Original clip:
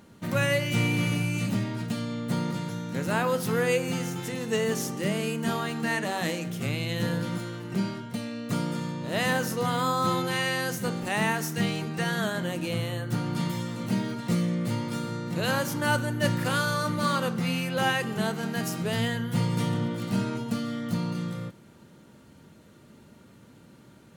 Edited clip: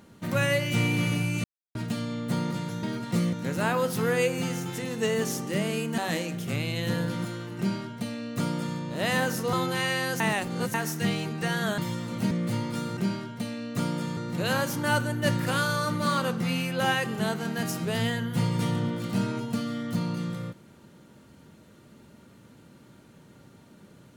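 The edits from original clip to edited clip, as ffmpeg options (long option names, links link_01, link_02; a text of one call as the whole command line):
ffmpeg -i in.wav -filter_complex "[0:a]asplit=13[link_01][link_02][link_03][link_04][link_05][link_06][link_07][link_08][link_09][link_10][link_11][link_12][link_13];[link_01]atrim=end=1.44,asetpts=PTS-STARTPTS,afade=type=out:start_time=1.436:duration=0.004:curve=hsin[link_14];[link_02]atrim=start=1.44:end=1.75,asetpts=PTS-STARTPTS,volume=0[link_15];[link_03]atrim=start=1.75:end=2.832,asetpts=PTS-STARTPTS,afade=type=in:duration=0.004:curve=hsin[link_16];[link_04]atrim=start=13.988:end=14.492[link_17];[link_05]atrim=start=2.828:end=5.482[link_18];[link_06]atrim=start=6.108:end=9.662[link_19];[link_07]atrim=start=10.088:end=10.762[link_20];[link_08]atrim=start=10.758:end=11.302,asetpts=PTS-STARTPTS,areverse[link_21];[link_09]atrim=start=11.298:end=12.342[link_22];[link_10]atrim=start=13.458:end=13.992[link_23];[link_11]atrim=start=14.488:end=15.152[link_24];[link_12]atrim=start=7.708:end=8.912[link_25];[link_13]atrim=start=15.148[link_26];[link_14][link_15][link_16]concat=n=3:v=0:a=1[link_27];[link_27][link_17]acrossfade=duration=0.004:curve1=hsin:curve2=hsin[link_28];[link_28][link_18]acrossfade=duration=0.004:curve1=hsin:curve2=hsin[link_29];[link_29][link_19]acrossfade=duration=0.004:curve1=hsin:curve2=hsin[link_30];[link_30][link_20]acrossfade=duration=0.004:curve1=hsin:curve2=hsin[link_31];[link_31][link_21]acrossfade=duration=0.004:curve1=hsin:curve2=hsin[link_32];[link_32][link_22]acrossfade=duration=0.004:curve1=hsin:curve2=hsin[link_33];[link_33][link_23]acrossfade=duration=0.004:curve1=hsin:curve2=hsin[link_34];[link_34][link_24]acrossfade=duration=0.004:curve1=hsin:curve2=hsin[link_35];[link_35][link_25]acrossfade=duration=0.004:curve1=hsin:curve2=hsin[link_36];[link_36][link_26]acrossfade=duration=0.004:curve1=hsin:curve2=hsin" out.wav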